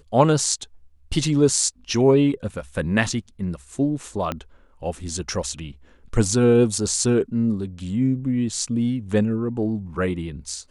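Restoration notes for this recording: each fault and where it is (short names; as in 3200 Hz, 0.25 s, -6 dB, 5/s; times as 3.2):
4.32 pop -12 dBFS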